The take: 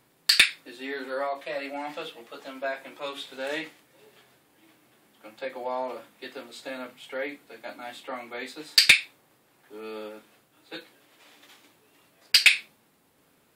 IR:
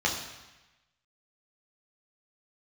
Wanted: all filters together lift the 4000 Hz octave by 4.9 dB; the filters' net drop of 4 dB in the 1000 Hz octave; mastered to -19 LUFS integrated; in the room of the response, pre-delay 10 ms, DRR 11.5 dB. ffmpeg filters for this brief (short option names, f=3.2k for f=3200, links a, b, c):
-filter_complex "[0:a]equalizer=f=1k:t=o:g=-6,equalizer=f=4k:t=o:g=6,asplit=2[a][b];[1:a]atrim=start_sample=2205,adelay=10[c];[b][c]afir=irnorm=-1:irlink=0,volume=-23dB[d];[a][d]amix=inputs=2:normalize=0"